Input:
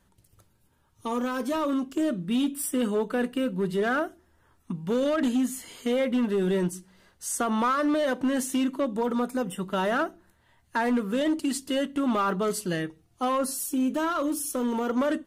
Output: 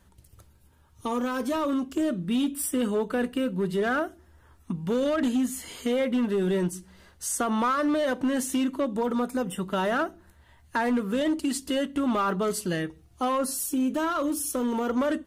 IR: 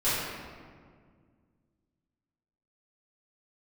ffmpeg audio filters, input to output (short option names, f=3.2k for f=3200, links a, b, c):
-filter_complex "[0:a]equalizer=f=68:w=4.2:g=14.5,asplit=2[a][b];[b]acompressor=threshold=-35dB:ratio=6,volume=1dB[c];[a][c]amix=inputs=2:normalize=0,volume=-2.5dB"